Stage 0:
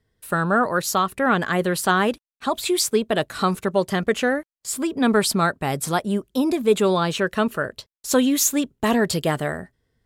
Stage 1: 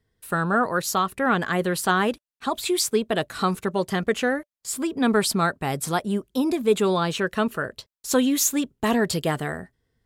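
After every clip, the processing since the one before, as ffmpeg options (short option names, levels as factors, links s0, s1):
-af "bandreject=f=590:w=15,volume=0.794"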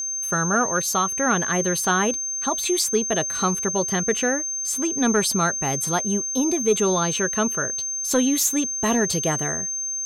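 -af "acontrast=65,aeval=exprs='val(0)+0.112*sin(2*PI*6300*n/s)':c=same,volume=0.501"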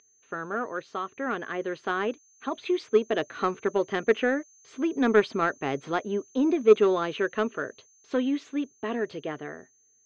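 -af "dynaudnorm=f=230:g=21:m=2.51,highpass=170,equalizer=f=180:t=q:w=4:g=-9,equalizer=f=290:t=q:w=4:g=4,equalizer=f=420:t=q:w=4:g=5,equalizer=f=870:t=q:w=4:g=-4,lowpass=f=3100:w=0.5412,lowpass=f=3100:w=1.3066,aeval=exprs='0.944*(cos(1*acos(clip(val(0)/0.944,-1,1)))-cos(1*PI/2))+0.119*(cos(3*acos(clip(val(0)/0.944,-1,1)))-cos(3*PI/2))':c=same,volume=0.531"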